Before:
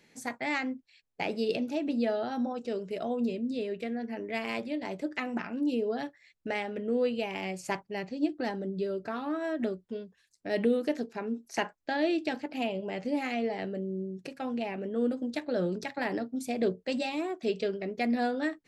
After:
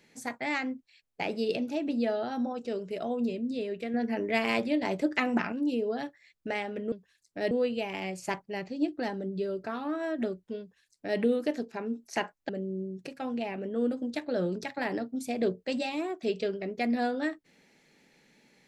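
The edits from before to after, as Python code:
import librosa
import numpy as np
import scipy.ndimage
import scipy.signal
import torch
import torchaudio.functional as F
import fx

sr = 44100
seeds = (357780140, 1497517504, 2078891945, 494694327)

y = fx.edit(x, sr, fx.clip_gain(start_s=3.94, length_s=1.58, db=6.0),
    fx.duplicate(start_s=10.01, length_s=0.59, to_s=6.92),
    fx.cut(start_s=11.9, length_s=1.79), tone=tone)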